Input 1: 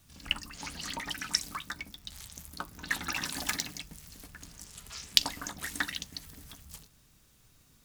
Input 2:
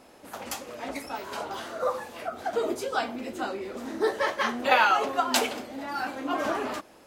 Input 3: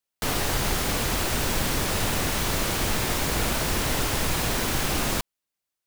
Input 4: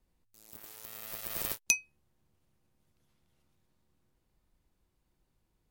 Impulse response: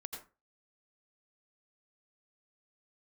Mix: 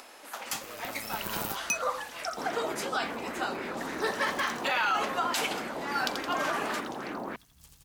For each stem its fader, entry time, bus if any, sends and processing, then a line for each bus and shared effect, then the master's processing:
-12.5 dB, 0.90 s, no bus, no send, echo send -6.5 dB, none
+2.5 dB, 0.00 s, bus A, no send, no echo send, high-pass 1.2 kHz 12 dB/octave
-14.0 dB, 2.15 s, bus A, no send, no echo send, high-pass 350 Hz 12 dB/octave; LFO low-pass sine 3.5 Hz 840–2100 Hz
-9.5 dB, 0.00 s, bus A, no send, no echo send, waveshaping leveller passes 3
bus A: 0.0 dB, peaking EQ 220 Hz +14 dB 2.2 oct; peak limiter -19 dBFS, peak gain reduction 11 dB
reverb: none
echo: feedback delay 84 ms, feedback 59%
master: upward compressor, threshold -44 dBFS

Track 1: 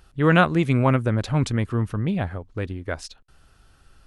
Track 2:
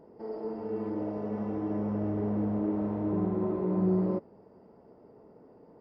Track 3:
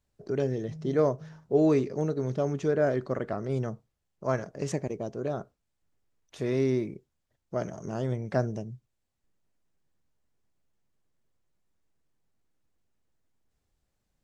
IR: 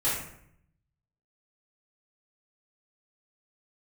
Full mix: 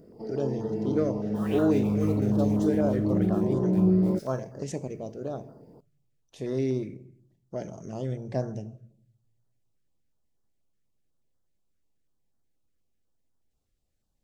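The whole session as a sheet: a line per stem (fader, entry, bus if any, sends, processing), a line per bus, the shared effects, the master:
-20.0 dB, 1.15 s, send -5.5 dB, reverb removal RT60 0.59 s; inverse Chebyshev high-pass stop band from 480 Hz, stop band 40 dB; word length cut 6-bit, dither none
+1.5 dB, 0.00 s, no send, tone controls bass +6 dB, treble +11 dB
-2.5 dB, 0.00 s, send -19.5 dB, none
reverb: on, RT60 0.70 s, pre-delay 3 ms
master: step-sequenced notch 8.2 Hz 890–2400 Hz

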